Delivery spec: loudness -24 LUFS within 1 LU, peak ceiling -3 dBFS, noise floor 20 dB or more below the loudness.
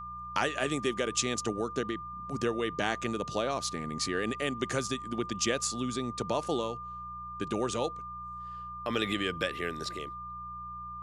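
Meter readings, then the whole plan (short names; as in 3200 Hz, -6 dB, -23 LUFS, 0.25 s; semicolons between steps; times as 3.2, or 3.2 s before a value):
hum 60 Hz; harmonics up to 180 Hz; hum level -49 dBFS; steady tone 1200 Hz; tone level -39 dBFS; loudness -33.0 LUFS; peak -13.5 dBFS; loudness target -24.0 LUFS
-> de-hum 60 Hz, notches 3; notch 1200 Hz, Q 30; gain +9 dB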